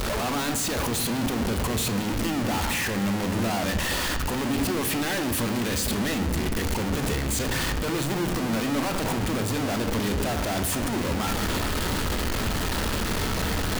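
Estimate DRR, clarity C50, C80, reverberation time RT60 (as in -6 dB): 7.0 dB, 9.5 dB, 11.5 dB, 1.5 s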